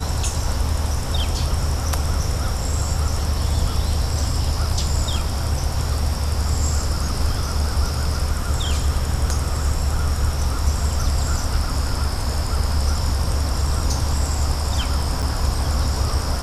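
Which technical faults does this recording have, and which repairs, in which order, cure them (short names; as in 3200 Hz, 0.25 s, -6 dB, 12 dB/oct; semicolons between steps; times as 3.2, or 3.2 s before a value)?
15.22–15.23 gap 7.3 ms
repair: interpolate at 15.22, 7.3 ms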